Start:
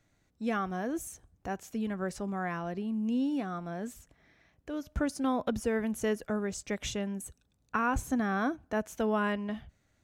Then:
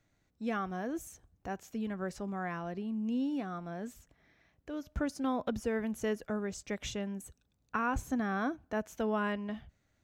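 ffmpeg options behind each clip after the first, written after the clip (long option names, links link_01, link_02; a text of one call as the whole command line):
ffmpeg -i in.wav -af "equalizer=frequency=9700:width_type=o:width=0.58:gain=-6,volume=-3dB" out.wav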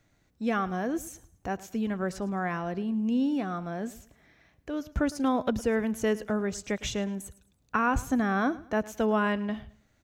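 ffmpeg -i in.wav -af "aecho=1:1:108|216|324:0.112|0.0337|0.0101,volume=6.5dB" out.wav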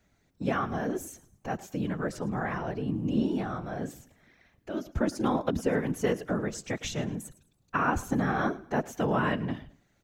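ffmpeg -i in.wav -af "afftfilt=real='hypot(re,im)*cos(2*PI*random(0))':imag='hypot(re,im)*sin(2*PI*random(1))':win_size=512:overlap=0.75,volume=5dB" out.wav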